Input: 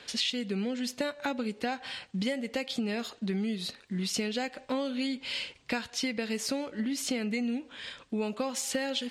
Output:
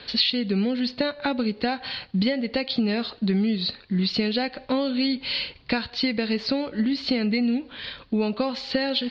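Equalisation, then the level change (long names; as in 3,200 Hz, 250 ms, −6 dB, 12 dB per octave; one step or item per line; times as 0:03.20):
low-pass with resonance 4,400 Hz, resonance Q 8.6
high-frequency loss of the air 350 metres
low-shelf EQ 120 Hz +9 dB
+7.0 dB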